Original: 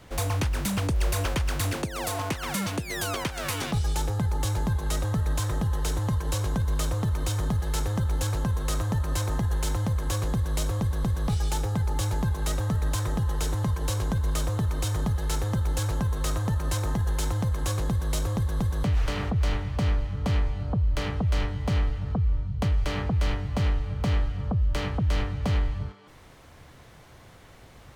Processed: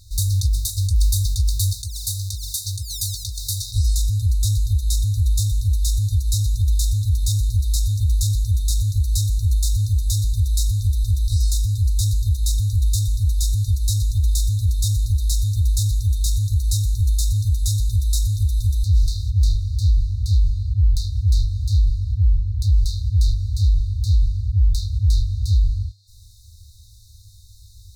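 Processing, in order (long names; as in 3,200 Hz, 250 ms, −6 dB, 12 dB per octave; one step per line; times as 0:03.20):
brick-wall band-stop 110–3,600 Hz
level +8.5 dB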